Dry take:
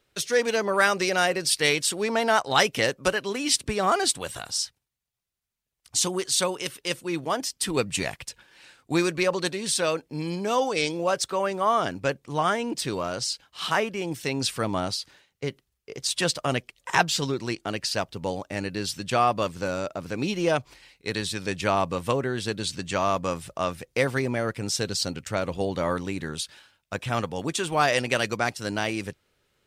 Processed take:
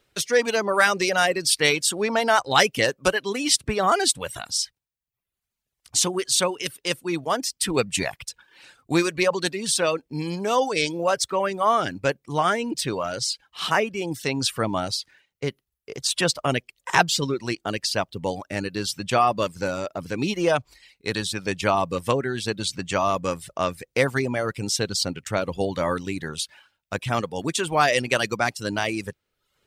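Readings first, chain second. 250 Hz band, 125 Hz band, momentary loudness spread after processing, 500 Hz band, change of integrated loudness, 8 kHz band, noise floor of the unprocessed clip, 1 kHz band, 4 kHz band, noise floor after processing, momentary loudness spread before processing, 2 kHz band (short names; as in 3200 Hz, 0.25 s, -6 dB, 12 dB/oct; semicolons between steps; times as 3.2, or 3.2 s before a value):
+1.5 dB, +1.5 dB, 9 LU, +2.0 dB, +2.5 dB, +2.5 dB, -77 dBFS, +2.5 dB, +2.5 dB, -83 dBFS, 9 LU, +2.5 dB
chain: reverb removal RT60 0.66 s; gain +3 dB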